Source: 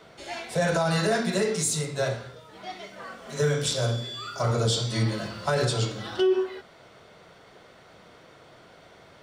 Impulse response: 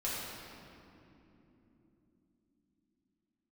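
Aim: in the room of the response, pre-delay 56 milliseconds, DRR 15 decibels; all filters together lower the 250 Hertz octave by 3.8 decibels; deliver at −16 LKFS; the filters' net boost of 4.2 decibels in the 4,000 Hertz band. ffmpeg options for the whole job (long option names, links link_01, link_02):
-filter_complex "[0:a]equalizer=frequency=250:width_type=o:gain=-7,equalizer=frequency=4000:width_type=o:gain=5,asplit=2[link_01][link_02];[1:a]atrim=start_sample=2205,adelay=56[link_03];[link_02][link_03]afir=irnorm=-1:irlink=0,volume=-20dB[link_04];[link_01][link_04]amix=inputs=2:normalize=0,volume=10.5dB"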